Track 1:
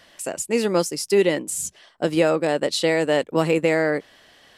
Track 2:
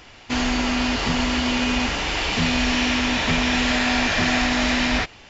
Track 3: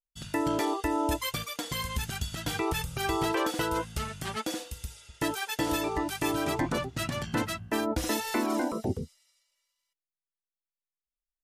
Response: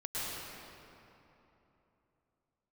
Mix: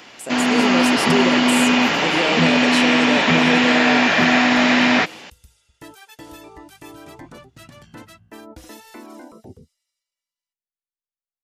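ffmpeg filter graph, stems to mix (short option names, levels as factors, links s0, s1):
-filter_complex "[0:a]alimiter=limit=0.224:level=0:latency=1,volume=0.596,asplit=2[s0][s1];[1:a]acrossover=split=3300[s2][s3];[s3]acompressor=threshold=0.0141:ratio=4:attack=1:release=60[s4];[s2][s4]amix=inputs=2:normalize=0,highpass=f=150:w=0.5412,highpass=f=150:w=1.3066,volume=1.41[s5];[2:a]adelay=600,volume=0.158[s6];[s1]apad=whole_len=530819[s7];[s6][s7]sidechaincompress=threshold=0.0112:ratio=8:attack=16:release=231[s8];[s0][s5][s8]amix=inputs=3:normalize=0,dynaudnorm=f=130:g=7:m=1.78"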